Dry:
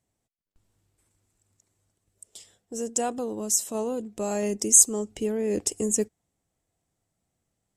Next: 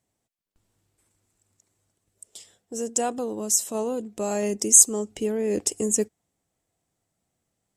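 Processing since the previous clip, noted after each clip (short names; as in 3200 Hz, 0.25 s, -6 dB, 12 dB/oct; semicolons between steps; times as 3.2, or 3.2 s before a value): low shelf 100 Hz -7 dB; gain +2 dB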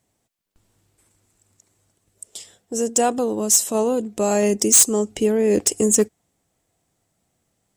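hard clip -17 dBFS, distortion -7 dB; gain +7.5 dB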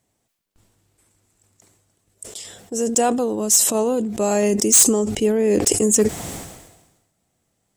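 sustainer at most 52 dB/s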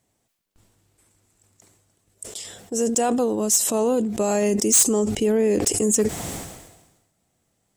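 limiter -13 dBFS, peak gain reduction 8 dB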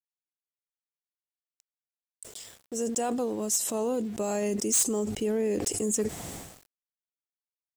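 sample gate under -38 dBFS; gain -8 dB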